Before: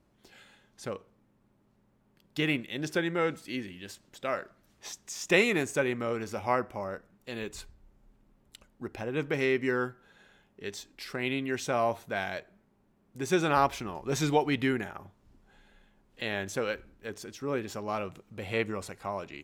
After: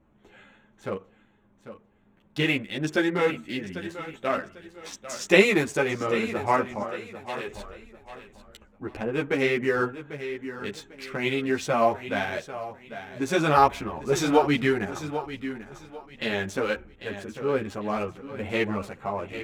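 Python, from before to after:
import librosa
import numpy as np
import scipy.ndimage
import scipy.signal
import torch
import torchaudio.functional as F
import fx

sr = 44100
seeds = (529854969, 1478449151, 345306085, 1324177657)

p1 = fx.wiener(x, sr, points=9)
p2 = fx.highpass(p1, sr, hz=500.0, slope=12, at=(6.82, 7.48))
p3 = p2 + fx.echo_feedback(p2, sr, ms=796, feedback_pct=30, wet_db=-12, dry=0)
p4 = fx.ensemble(p3, sr)
y = p4 * 10.0 ** (8.5 / 20.0)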